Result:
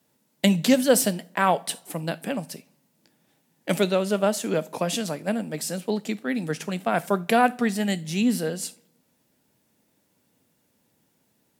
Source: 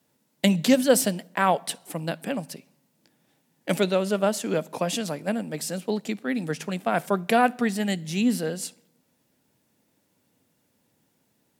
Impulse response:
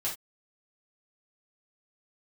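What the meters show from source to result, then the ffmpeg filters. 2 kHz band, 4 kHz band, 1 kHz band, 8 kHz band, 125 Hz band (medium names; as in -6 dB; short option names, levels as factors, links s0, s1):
+0.5 dB, +1.0 dB, +0.5 dB, +1.5 dB, +1.0 dB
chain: -filter_complex "[0:a]asplit=2[s0][s1];[1:a]atrim=start_sample=2205,highshelf=f=5400:g=11[s2];[s1][s2]afir=irnorm=-1:irlink=0,volume=0.0944[s3];[s0][s3]amix=inputs=2:normalize=0"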